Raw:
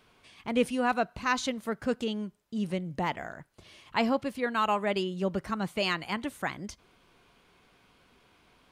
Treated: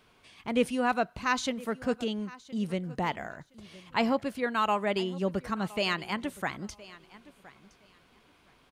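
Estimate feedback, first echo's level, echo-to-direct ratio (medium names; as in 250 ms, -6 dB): 18%, -20.0 dB, -20.0 dB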